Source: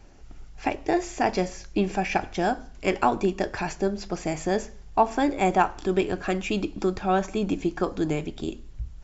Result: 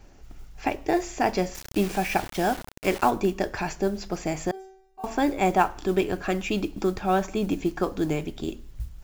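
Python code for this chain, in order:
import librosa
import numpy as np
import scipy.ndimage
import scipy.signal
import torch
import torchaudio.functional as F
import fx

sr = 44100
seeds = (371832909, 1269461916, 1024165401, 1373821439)

y = fx.mod_noise(x, sr, seeds[0], snr_db=28)
y = fx.quant_dither(y, sr, seeds[1], bits=6, dither='none', at=(1.54, 3.09), fade=0.02)
y = fx.stiff_resonator(y, sr, f0_hz=380.0, decay_s=0.75, stiffness=0.002, at=(4.51, 5.04))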